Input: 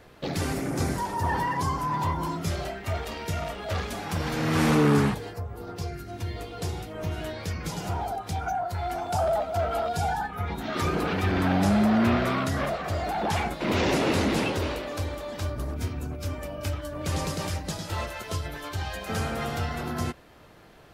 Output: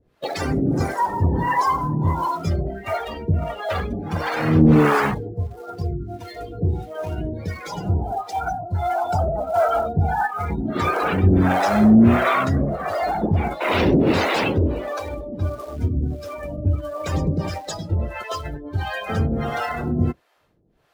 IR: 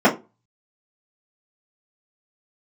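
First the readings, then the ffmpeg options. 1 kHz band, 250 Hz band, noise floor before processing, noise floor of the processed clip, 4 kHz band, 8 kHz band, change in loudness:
+6.0 dB, +7.5 dB, −43 dBFS, −40 dBFS, +1.0 dB, can't be measured, +6.5 dB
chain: -filter_complex "[0:a]afftdn=noise_reduction=19:noise_floor=-35,asplit=2[link_01][link_02];[link_02]acrusher=bits=5:mode=log:mix=0:aa=0.000001,volume=-8dB[link_03];[link_01][link_03]amix=inputs=2:normalize=0,acrossover=split=480[link_04][link_05];[link_04]aeval=exprs='val(0)*(1-1/2+1/2*cos(2*PI*1.5*n/s))':channel_layout=same[link_06];[link_05]aeval=exprs='val(0)*(1-1/2-1/2*cos(2*PI*1.5*n/s))':channel_layout=same[link_07];[link_06][link_07]amix=inputs=2:normalize=0,volume=9dB"

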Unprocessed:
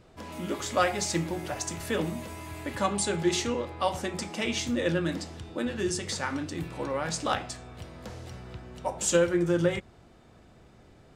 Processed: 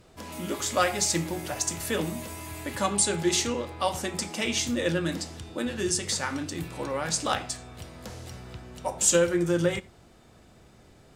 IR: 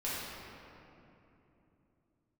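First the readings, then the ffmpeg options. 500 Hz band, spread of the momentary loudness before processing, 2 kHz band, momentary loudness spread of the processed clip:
+0.5 dB, 16 LU, +1.5 dB, 15 LU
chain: -filter_complex "[0:a]aemphasis=mode=production:type=cd,asplit=2[link_01][link_02];[1:a]atrim=start_sample=2205,atrim=end_sample=4410[link_03];[link_02][link_03]afir=irnorm=-1:irlink=0,volume=-20dB[link_04];[link_01][link_04]amix=inputs=2:normalize=0"

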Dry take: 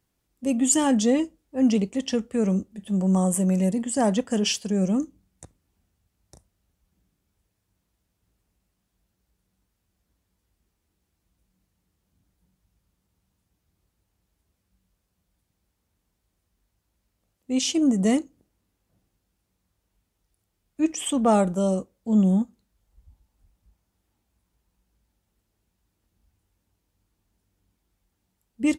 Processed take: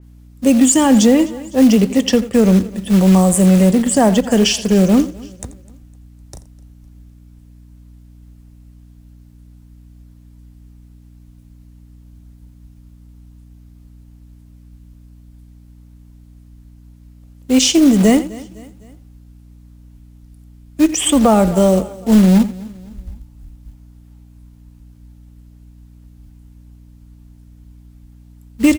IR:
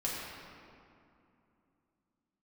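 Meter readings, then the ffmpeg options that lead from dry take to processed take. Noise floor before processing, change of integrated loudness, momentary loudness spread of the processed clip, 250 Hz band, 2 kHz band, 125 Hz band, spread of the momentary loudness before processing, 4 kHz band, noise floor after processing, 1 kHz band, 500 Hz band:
−77 dBFS, +10.5 dB, 7 LU, +10.5 dB, +11.0 dB, +11.0 dB, 8 LU, +11.0 dB, −44 dBFS, +9.0 dB, +10.5 dB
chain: -filter_complex "[0:a]asplit=2[link_01][link_02];[link_02]aecho=0:1:85:0.141[link_03];[link_01][link_03]amix=inputs=2:normalize=0,acrusher=bits=5:mode=log:mix=0:aa=0.000001,asubboost=boost=4:cutoff=70,asplit=2[link_04][link_05];[link_05]aecho=0:1:254|508|762:0.0708|0.0319|0.0143[link_06];[link_04][link_06]amix=inputs=2:normalize=0,acrossover=split=210[link_07][link_08];[link_08]acompressor=threshold=-23dB:ratio=6[link_09];[link_07][link_09]amix=inputs=2:normalize=0,aeval=exprs='val(0)+0.00178*(sin(2*PI*60*n/s)+sin(2*PI*2*60*n/s)/2+sin(2*PI*3*60*n/s)/3+sin(2*PI*4*60*n/s)/4+sin(2*PI*5*60*n/s)/5)':channel_layout=same,alimiter=level_in=15.5dB:limit=-1dB:release=50:level=0:latency=1,adynamicequalizer=threshold=0.0251:dfrequency=3300:dqfactor=0.7:tfrequency=3300:tqfactor=0.7:attack=5:release=100:ratio=0.375:range=1.5:mode=cutabove:tftype=highshelf,volume=-1.5dB"

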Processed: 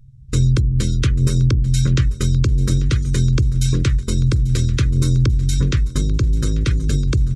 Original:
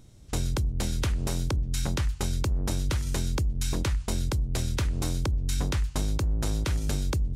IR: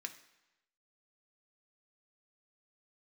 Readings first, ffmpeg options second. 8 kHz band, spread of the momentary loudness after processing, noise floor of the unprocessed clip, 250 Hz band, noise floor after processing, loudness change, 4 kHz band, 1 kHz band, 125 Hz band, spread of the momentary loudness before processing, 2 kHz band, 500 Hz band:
+5.5 dB, 3 LU, −44 dBFS, +11.0 dB, −32 dBFS, +11.0 dB, +6.5 dB, 0.0 dB, +13.5 dB, 1 LU, +6.5 dB, +6.5 dB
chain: -filter_complex "[0:a]afftdn=noise_reduction=27:noise_floor=-40,asuperstop=centerf=770:order=4:qfactor=0.99,equalizer=frequency=130:width=7.4:gain=10.5,asplit=2[link_01][link_02];[link_02]aecho=0:1:841|1682|2523|3364:0.126|0.0617|0.0302|0.0148[link_03];[link_01][link_03]amix=inputs=2:normalize=0,volume=9dB"

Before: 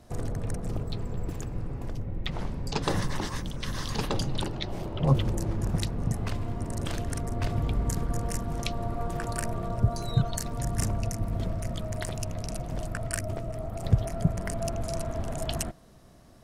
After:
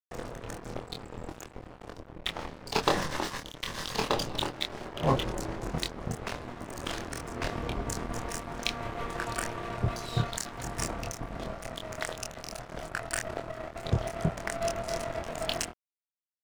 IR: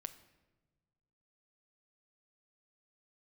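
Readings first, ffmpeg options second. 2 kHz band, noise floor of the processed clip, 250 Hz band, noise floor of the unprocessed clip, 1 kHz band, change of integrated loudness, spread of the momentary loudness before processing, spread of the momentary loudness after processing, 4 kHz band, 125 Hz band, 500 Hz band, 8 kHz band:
+4.5 dB, −56 dBFS, −4.5 dB, −40 dBFS, +2.5 dB, −2.5 dB, 7 LU, 11 LU, +3.0 dB, −8.0 dB, +0.5 dB, −0.5 dB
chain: -filter_complex "[0:a]lowpass=7800,bass=frequency=250:gain=-11,treble=frequency=4000:gain=-2,aeval=exprs='sgn(val(0))*max(abs(val(0))-0.0112,0)':channel_layout=same,asplit=2[link_01][link_02];[link_02]adelay=25,volume=-4dB[link_03];[link_01][link_03]amix=inputs=2:normalize=0,volume=5.5dB"

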